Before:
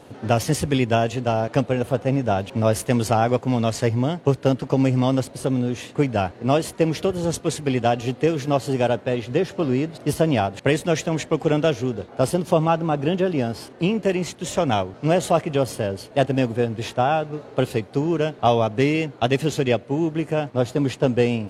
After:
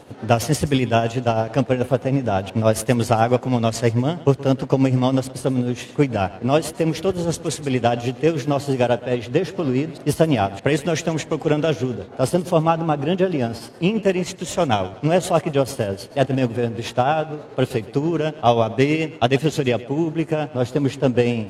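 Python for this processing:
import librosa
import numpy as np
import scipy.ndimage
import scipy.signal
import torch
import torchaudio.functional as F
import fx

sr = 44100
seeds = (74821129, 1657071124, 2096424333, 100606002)

y = x * (1.0 - 0.51 / 2.0 + 0.51 / 2.0 * np.cos(2.0 * np.pi * 9.3 * (np.arange(len(x)) / sr)))
y = fx.echo_feedback(y, sr, ms=123, feedback_pct=32, wet_db=-18.0)
y = y * 10.0 ** (3.5 / 20.0)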